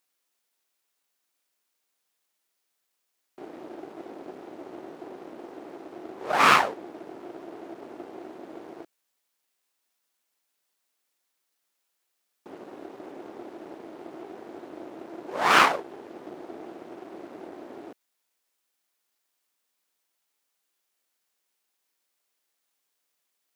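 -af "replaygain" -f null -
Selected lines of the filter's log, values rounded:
track_gain = +24.2 dB
track_peak = 0.541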